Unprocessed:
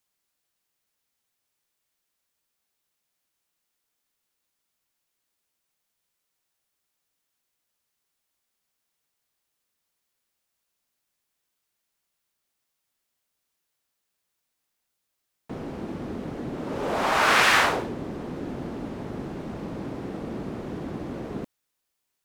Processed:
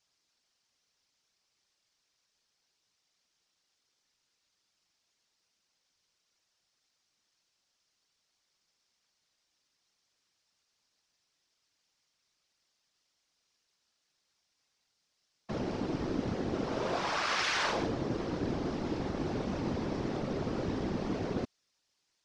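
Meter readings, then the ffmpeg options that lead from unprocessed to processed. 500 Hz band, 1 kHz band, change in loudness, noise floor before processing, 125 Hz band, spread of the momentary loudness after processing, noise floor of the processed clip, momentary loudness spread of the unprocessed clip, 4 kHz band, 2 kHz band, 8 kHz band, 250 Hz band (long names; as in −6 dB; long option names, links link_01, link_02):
−3.5 dB, −9.5 dB, −7.0 dB, −80 dBFS, −1.0 dB, 6 LU, −80 dBFS, 17 LU, −7.5 dB, −11.5 dB, −9.0 dB, −1.5 dB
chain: -af "acontrast=90,lowpass=frequency=5400:width_type=q:width=2.5,areverse,acompressor=threshold=-23dB:ratio=8,areverse,afftfilt=real='hypot(re,im)*cos(2*PI*random(0))':imag='hypot(re,im)*sin(2*PI*random(1))':win_size=512:overlap=0.75"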